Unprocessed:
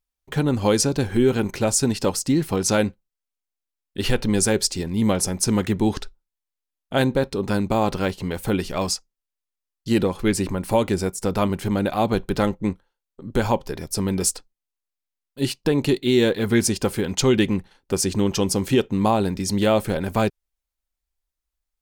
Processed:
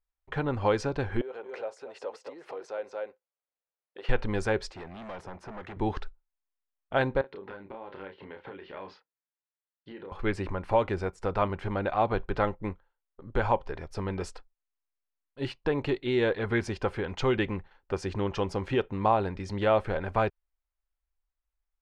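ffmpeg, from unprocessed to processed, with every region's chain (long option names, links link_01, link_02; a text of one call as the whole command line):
ffmpeg -i in.wav -filter_complex "[0:a]asettb=1/sr,asplit=3[link_01][link_02][link_03];[link_01]atrim=end=1.214[link_04];[link_02]atrim=start=1.21:end=4.09,asetpts=PTS-STARTPTS,afade=type=in:duration=0.004:curve=qsin,afade=type=out:start_time=2.876:duration=0.004:curve=qsin,aecho=1:1:229:0.251,atrim=end_sample=127008,acompressor=threshold=-30dB:ratio=16:attack=3.2:release=140:knee=1:detection=peak,highpass=frequency=490:width_type=q:width=3.1[link_05];[link_03]atrim=start=4.086[link_06];[link_04][link_05]acrossfade=duration=0.004:curve1=hsin:curve2=qsin[link_07];[link_07][link_06]acrossfade=duration=0.004:curve1=qsin:curve2=hsin,asettb=1/sr,asplit=3[link_08][link_09][link_10];[link_08]atrim=end=4.714[link_11];[link_09]atrim=start=4.71:end=5.77,asetpts=PTS-STARTPTS,afade=type=in:duration=0.004:curve=qsin,afade=type=out:start_time=1.056:duration=0.004:curve=qsin,highpass=frequency=110:poles=1,acrossover=split=200|2000[link_12][link_13][link_14];[link_12]acompressor=threshold=-34dB:ratio=4[link_15];[link_13]acompressor=threshold=-27dB:ratio=4[link_16];[link_14]acompressor=threshold=-36dB:ratio=4[link_17];[link_15][link_16][link_17]amix=inputs=3:normalize=0,asoftclip=type=hard:threshold=-30dB[link_18];[link_10]atrim=start=5.766[link_19];[link_11][link_18]acrossfade=duration=0.004:curve1=hsin:curve2=qsin[link_20];[link_20][link_19]acrossfade=duration=0.004:curve1=qsin:curve2=hsin,asettb=1/sr,asplit=3[link_21][link_22][link_23];[link_21]atrim=end=7.214[link_24];[link_22]atrim=start=7.21:end=10.12,asetpts=PTS-STARTPTS,afade=type=in:duration=0.004:curve=qsin,afade=type=out:start_time=2.906:duration=0.004:curve=qsin,highpass=260,equalizer=frequency=710:width_type=q:width=4:gain=-10,equalizer=frequency=1200:width_type=q:width=4:gain=-8,equalizer=frequency=2500:width_type=q:width=4:gain=-5,lowpass=frequency=3400:width=0.5412,lowpass=frequency=3400:width=1.3066,acompressor=threshold=-31dB:ratio=16:attack=3.2:release=140:knee=1:detection=peak,asplit=2[link_25][link_26];[link_26]adelay=31,volume=-6dB[link_27];[link_25][link_27]amix=inputs=2:normalize=0,atrim=end_sample=128331[link_28];[link_23]atrim=start=10.116[link_29];[link_24][link_28]acrossfade=duration=0.004:curve1=hsin:curve2=qsin[link_30];[link_30][link_29]acrossfade=duration=0.004:curve1=qsin:curve2=hsin,lowpass=1800,equalizer=frequency=210:width=0.67:gain=-13.5" out.wav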